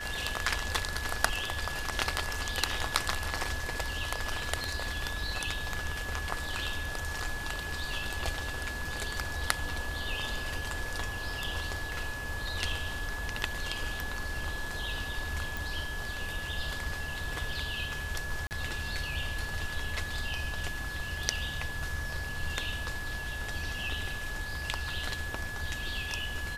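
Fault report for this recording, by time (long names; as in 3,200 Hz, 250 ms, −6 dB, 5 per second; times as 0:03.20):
whistle 1,700 Hz −38 dBFS
0:15.57: click
0:18.47–0:18.51: drop-out 39 ms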